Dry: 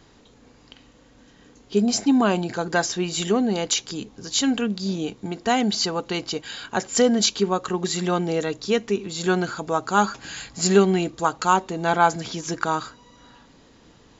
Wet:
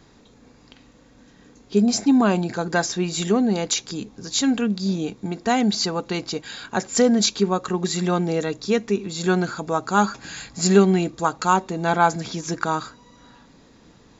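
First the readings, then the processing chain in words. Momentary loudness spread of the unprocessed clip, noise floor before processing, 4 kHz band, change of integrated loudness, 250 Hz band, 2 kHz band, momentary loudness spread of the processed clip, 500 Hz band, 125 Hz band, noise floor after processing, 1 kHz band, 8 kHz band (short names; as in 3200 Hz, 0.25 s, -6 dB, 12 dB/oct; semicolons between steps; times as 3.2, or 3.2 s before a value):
10 LU, -54 dBFS, -1.0 dB, +1.0 dB, +2.5 dB, 0.0 dB, 11 LU, +0.5 dB, +3.5 dB, -53 dBFS, 0.0 dB, n/a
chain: bell 190 Hz +3.5 dB 0.94 oct; notch 3000 Hz, Q 10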